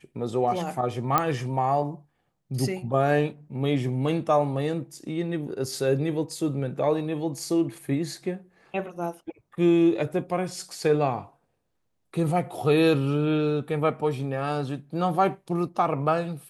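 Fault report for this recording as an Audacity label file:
1.180000	1.180000	pop -7 dBFS

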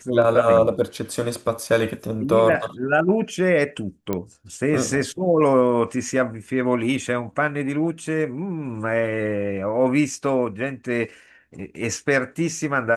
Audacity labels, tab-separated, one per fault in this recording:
4.130000	4.130000	pop -11 dBFS

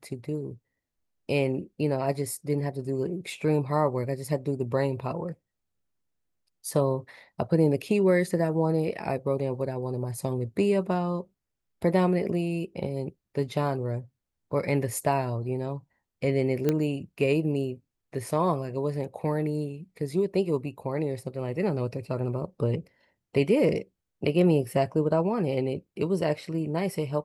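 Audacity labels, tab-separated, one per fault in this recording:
16.690000	16.690000	pop -12 dBFS

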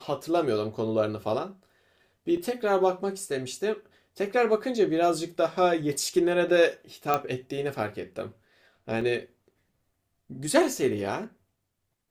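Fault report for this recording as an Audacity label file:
2.370000	2.370000	gap 2.5 ms
7.140000	7.140000	pop -11 dBFS
9.010000	9.010000	gap 4.2 ms

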